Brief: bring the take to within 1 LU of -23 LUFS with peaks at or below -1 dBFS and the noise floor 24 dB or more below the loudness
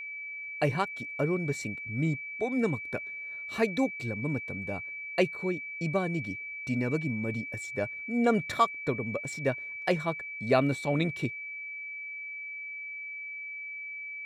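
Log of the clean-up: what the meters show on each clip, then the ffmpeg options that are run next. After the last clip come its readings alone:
steady tone 2300 Hz; tone level -37 dBFS; loudness -31.5 LUFS; peak -10.5 dBFS; loudness target -23.0 LUFS
-> -af "bandreject=f=2.3k:w=30"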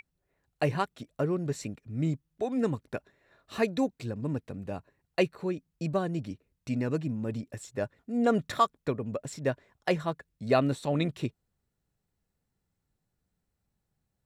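steady tone none; loudness -31.5 LUFS; peak -11.0 dBFS; loudness target -23.0 LUFS
-> -af "volume=8.5dB"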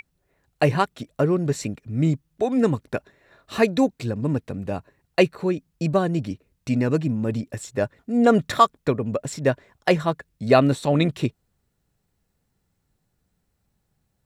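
loudness -23.0 LUFS; peak -2.5 dBFS; noise floor -74 dBFS

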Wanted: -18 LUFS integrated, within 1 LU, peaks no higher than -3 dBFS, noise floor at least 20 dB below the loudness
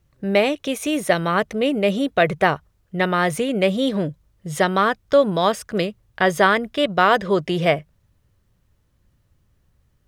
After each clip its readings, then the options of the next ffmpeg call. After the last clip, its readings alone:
loudness -20.0 LUFS; peak -2.0 dBFS; loudness target -18.0 LUFS
-> -af "volume=2dB,alimiter=limit=-3dB:level=0:latency=1"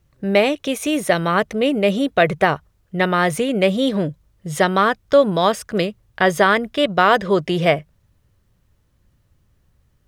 loudness -18.5 LUFS; peak -3.0 dBFS; noise floor -62 dBFS

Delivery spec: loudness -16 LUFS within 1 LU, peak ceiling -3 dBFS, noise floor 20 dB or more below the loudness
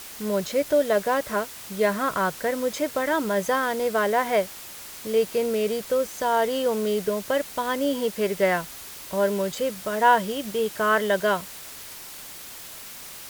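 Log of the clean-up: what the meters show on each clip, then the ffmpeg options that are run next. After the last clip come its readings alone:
noise floor -41 dBFS; noise floor target -45 dBFS; loudness -24.5 LUFS; peak -6.5 dBFS; loudness target -16.0 LUFS
-> -af "afftdn=nr=6:nf=-41"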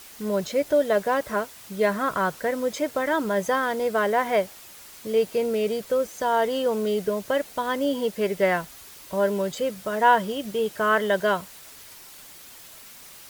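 noise floor -46 dBFS; loudness -24.5 LUFS; peak -6.5 dBFS; loudness target -16.0 LUFS
-> -af "volume=8.5dB,alimiter=limit=-3dB:level=0:latency=1"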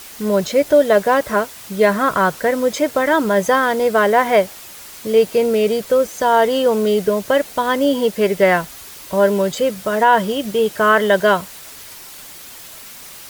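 loudness -16.5 LUFS; peak -3.0 dBFS; noise floor -37 dBFS

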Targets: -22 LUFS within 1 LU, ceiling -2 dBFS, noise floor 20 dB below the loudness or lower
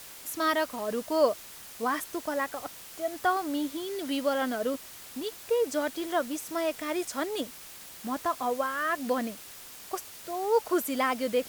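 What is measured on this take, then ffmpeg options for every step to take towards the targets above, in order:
noise floor -46 dBFS; noise floor target -51 dBFS; loudness -30.5 LUFS; peak -11.5 dBFS; loudness target -22.0 LUFS
-> -af "afftdn=nr=6:nf=-46"
-af "volume=8.5dB"

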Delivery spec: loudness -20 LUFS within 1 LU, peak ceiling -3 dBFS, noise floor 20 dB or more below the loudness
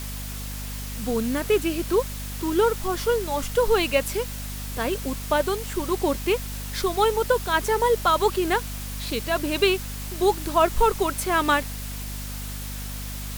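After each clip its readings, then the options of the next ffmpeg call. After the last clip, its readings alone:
hum 50 Hz; harmonics up to 250 Hz; hum level -32 dBFS; noise floor -33 dBFS; noise floor target -45 dBFS; loudness -24.5 LUFS; peak -7.5 dBFS; loudness target -20.0 LUFS
-> -af "bandreject=f=50:t=h:w=4,bandreject=f=100:t=h:w=4,bandreject=f=150:t=h:w=4,bandreject=f=200:t=h:w=4,bandreject=f=250:t=h:w=4"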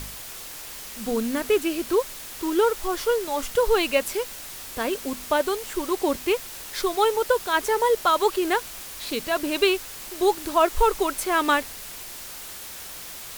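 hum none; noise floor -39 dBFS; noise floor target -44 dBFS
-> -af "afftdn=nr=6:nf=-39"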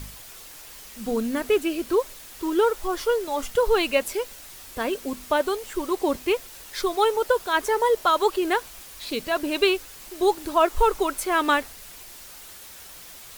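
noise floor -44 dBFS; loudness -24.0 LUFS; peak -7.5 dBFS; loudness target -20.0 LUFS
-> -af "volume=4dB"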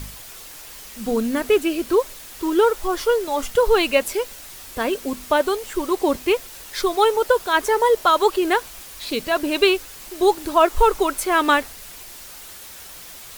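loudness -20.0 LUFS; peak -3.5 dBFS; noise floor -40 dBFS

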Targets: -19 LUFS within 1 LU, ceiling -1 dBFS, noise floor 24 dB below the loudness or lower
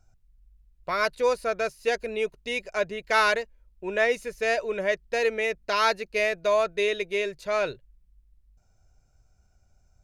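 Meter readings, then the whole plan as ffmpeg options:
loudness -26.5 LUFS; peak -10.5 dBFS; loudness target -19.0 LUFS
-> -af "volume=7.5dB"

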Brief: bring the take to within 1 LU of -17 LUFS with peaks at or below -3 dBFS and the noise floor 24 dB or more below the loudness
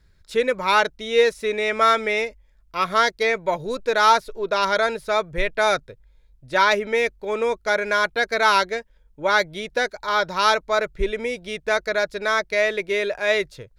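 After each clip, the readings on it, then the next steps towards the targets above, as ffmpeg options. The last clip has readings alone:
loudness -21.5 LUFS; peak -4.5 dBFS; loudness target -17.0 LUFS
-> -af "volume=4.5dB,alimiter=limit=-3dB:level=0:latency=1"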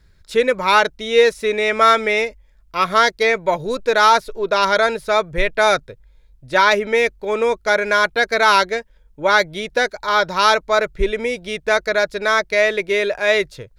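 loudness -17.0 LUFS; peak -3.0 dBFS; noise floor -53 dBFS

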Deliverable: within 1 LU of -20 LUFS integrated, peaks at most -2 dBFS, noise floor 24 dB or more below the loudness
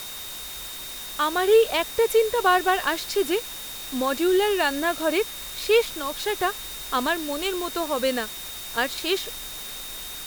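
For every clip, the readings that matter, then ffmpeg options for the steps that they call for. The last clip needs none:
steady tone 3700 Hz; tone level -39 dBFS; noise floor -36 dBFS; noise floor target -49 dBFS; loudness -24.5 LUFS; peak -7.5 dBFS; loudness target -20.0 LUFS
-> -af "bandreject=f=3.7k:w=30"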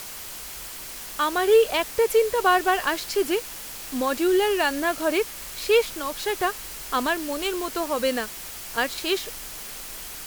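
steady tone none; noise floor -38 dBFS; noise floor target -49 dBFS
-> -af "afftdn=nr=11:nf=-38"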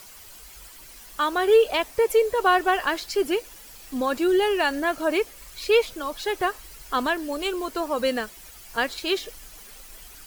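noise floor -46 dBFS; noise floor target -48 dBFS
-> -af "afftdn=nr=6:nf=-46"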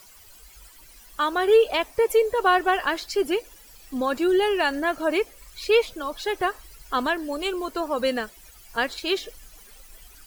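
noise floor -50 dBFS; loudness -24.0 LUFS; peak -8.5 dBFS; loudness target -20.0 LUFS
-> -af "volume=4dB"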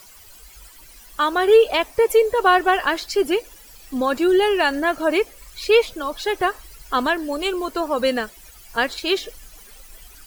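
loudness -20.0 LUFS; peak -4.5 dBFS; noise floor -46 dBFS

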